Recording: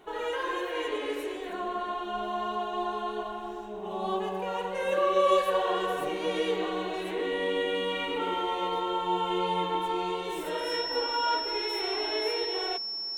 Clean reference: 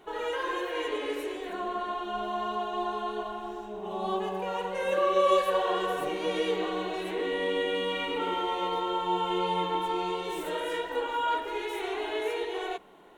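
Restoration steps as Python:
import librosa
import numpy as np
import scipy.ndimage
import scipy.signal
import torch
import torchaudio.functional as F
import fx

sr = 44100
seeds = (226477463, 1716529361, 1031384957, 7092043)

y = fx.notch(x, sr, hz=5400.0, q=30.0)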